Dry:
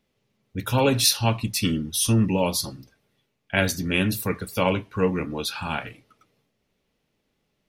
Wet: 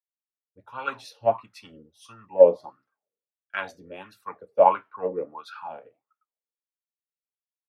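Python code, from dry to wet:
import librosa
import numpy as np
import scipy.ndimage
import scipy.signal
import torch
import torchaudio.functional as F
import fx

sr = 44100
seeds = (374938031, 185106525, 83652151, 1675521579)

y = fx.wah_lfo(x, sr, hz=1.5, low_hz=470.0, high_hz=1400.0, q=8.3)
y = fx.band_widen(y, sr, depth_pct=100)
y = F.gain(torch.from_numpy(y), 7.0).numpy()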